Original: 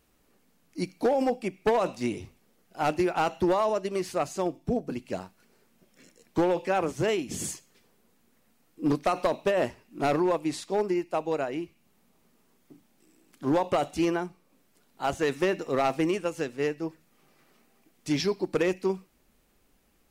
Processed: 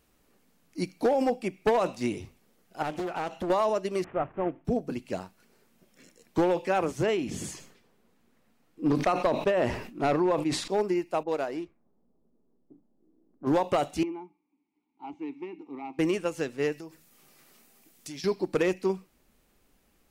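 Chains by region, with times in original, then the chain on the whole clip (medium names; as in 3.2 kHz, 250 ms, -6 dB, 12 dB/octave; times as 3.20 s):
2.82–3.50 s: compression 3:1, threshold -30 dBFS + loudspeaker Doppler distortion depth 0.81 ms
4.04–4.65 s: CVSD coder 16 kbps + low-pass 1.7 kHz
7.03–10.68 s: treble shelf 5.6 kHz -10 dB + decay stretcher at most 80 dB/s
11.23–13.47 s: median filter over 15 samples + level-controlled noise filter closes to 410 Hz, open at -27 dBFS + peaking EQ 130 Hz -7.5 dB 1.4 oct
14.03–15.99 s: vowel filter u + distance through air 71 m
16.72–18.24 s: treble shelf 3.9 kHz +12 dB + compression, threshold -39 dBFS
whole clip: none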